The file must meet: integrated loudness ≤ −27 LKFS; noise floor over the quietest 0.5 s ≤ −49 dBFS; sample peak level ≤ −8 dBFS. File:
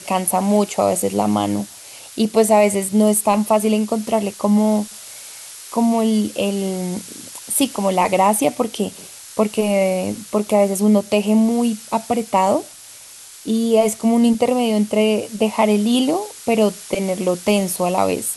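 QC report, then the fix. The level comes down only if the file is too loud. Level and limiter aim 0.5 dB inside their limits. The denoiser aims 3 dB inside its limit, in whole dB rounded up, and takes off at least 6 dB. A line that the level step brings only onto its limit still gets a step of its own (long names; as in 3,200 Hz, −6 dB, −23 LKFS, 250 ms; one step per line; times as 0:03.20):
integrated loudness −18.0 LKFS: out of spec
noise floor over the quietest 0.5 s −40 dBFS: out of spec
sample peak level −4.0 dBFS: out of spec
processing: level −9.5 dB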